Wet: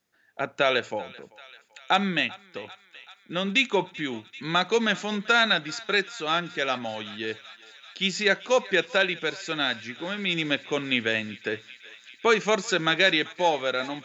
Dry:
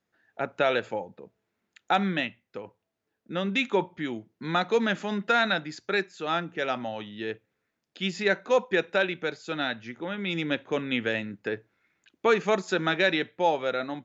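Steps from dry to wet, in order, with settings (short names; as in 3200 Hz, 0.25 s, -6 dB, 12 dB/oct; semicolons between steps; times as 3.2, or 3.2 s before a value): high shelf 2600 Hz +10.5 dB; on a send: thinning echo 0.388 s, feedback 85%, high-pass 1000 Hz, level -19 dB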